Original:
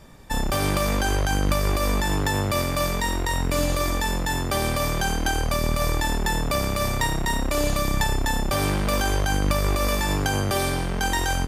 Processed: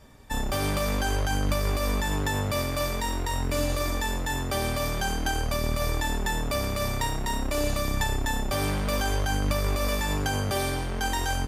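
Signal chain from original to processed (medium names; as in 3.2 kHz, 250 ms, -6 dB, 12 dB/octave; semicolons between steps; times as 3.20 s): comb of notches 170 Hz; trim -3 dB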